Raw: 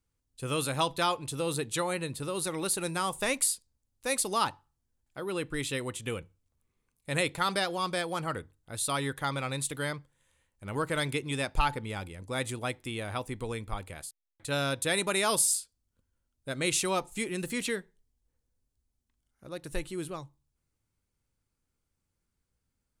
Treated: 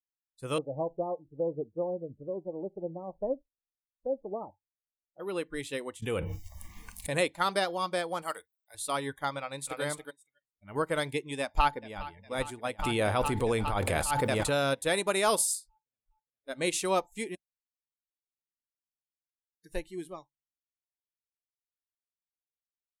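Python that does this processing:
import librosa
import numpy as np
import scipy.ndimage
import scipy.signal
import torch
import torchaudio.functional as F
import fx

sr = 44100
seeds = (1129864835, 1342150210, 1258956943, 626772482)

y = fx.cheby1_lowpass(x, sr, hz=640.0, order=3, at=(0.58, 5.2))
y = fx.env_flatten(y, sr, amount_pct=100, at=(6.02, 7.15))
y = fx.riaa(y, sr, side='recording', at=(8.22, 8.75))
y = fx.echo_throw(y, sr, start_s=9.39, length_s=0.43, ms=280, feedback_pct=15, wet_db=-2.0)
y = fx.echo_throw(y, sr, start_s=11.41, length_s=0.66, ms=410, feedback_pct=75, wet_db=-11.0)
y = fx.env_flatten(y, sr, amount_pct=100, at=(12.79, 14.74))
y = fx.edit(y, sr, fx.room_tone_fill(start_s=17.35, length_s=2.29), tone=tone)
y = fx.noise_reduce_blind(y, sr, reduce_db=26)
y = fx.dynamic_eq(y, sr, hz=600.0, q=0.74, threshold_db=-44.0, ratio=4.0, max_db=6)
y = fx.upward_expand(y, sr, threshold_db=-39.0, expansion=1.5)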